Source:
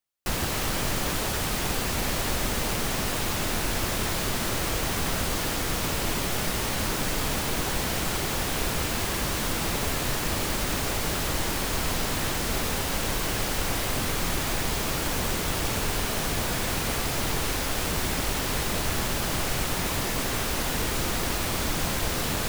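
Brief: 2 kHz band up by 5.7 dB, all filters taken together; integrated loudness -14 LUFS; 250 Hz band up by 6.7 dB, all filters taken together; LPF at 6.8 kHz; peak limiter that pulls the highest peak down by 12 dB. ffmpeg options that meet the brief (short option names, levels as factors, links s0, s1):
-af "lowpass=6800,equalizer=f=250:t=o:g=8.5,equalizer=f=2000:t=o:g=7,volume=7.5,alimiter=limit=0.531:level=0:latency=1"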